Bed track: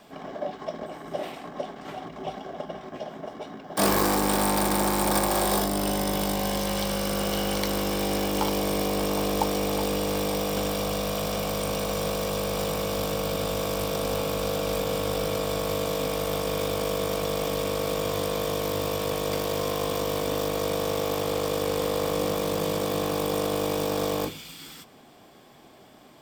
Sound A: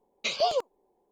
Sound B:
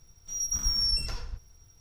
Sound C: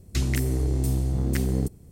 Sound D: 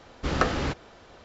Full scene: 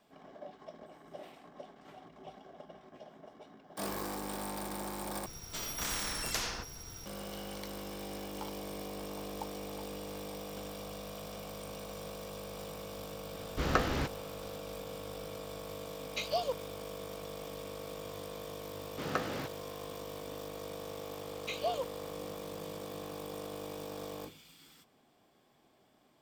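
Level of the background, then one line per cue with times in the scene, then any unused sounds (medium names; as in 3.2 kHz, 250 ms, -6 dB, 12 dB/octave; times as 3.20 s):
bed track -16 dB
5.26 s: replace with B -0.5 dB + spectrum-flattening compressor 4:1
13.34 s: add D -5 dB
15.92 s: add A -8 dB + transient shaper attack +1 dB, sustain -4 dB
18.74 s: add D -10 dB + high-pass 110 Hz 24 dB/octave
21.23 s: add A -8.5 dB + peaking EQ 5.1 kHz -15 dB 0.31 oct
not used: C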